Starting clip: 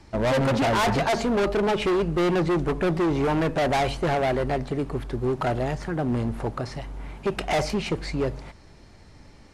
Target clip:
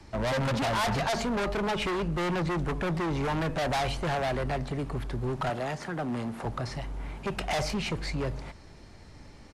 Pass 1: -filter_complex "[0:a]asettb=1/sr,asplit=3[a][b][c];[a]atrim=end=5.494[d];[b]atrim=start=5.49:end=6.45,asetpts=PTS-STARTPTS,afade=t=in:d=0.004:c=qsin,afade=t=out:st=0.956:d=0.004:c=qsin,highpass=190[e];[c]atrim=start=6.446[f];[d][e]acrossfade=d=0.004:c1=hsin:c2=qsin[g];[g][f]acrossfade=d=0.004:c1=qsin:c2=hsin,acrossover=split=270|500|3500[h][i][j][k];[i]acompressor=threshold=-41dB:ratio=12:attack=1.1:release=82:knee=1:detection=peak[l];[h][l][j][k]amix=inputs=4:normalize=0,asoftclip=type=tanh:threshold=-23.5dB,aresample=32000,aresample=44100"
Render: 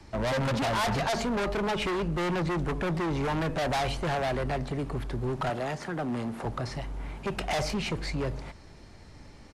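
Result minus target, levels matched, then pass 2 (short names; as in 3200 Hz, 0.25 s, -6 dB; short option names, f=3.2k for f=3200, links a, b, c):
compressor: peak gain reduction -7.5 dB
-filter_complex "[0:a]asettb=1/sr,asplit=3[a][b][c];[a]atrim=end=5.494[d];[b]atrim=start=5.49:end=6.45,asetpts=PTS-STARTPTS,afade=t=in:d=0.004:c=qsin,afade=t=out:st=0.956:d=0.004:c=qsin,highpass=190[e];[c]atrim=start=6.446[f];[d][e]acrossfade=d=0.004:c1=hsin:c2=qsin[g];[g][f]acrossfade=d=0.004:c1=qsin:c2=hsin,acrossover=split=270|500|3500[h][i][j][k];[i]acompressor=threshold=-49dB:ratio=12:attack=1.1:release=82:knee=1:detection=peak[l];[h][l][j][k]amix=inputs=4:normalize=0,asoftclip=type=tanh:threshold=-23.5dB,aresample=32000,aresample=44100"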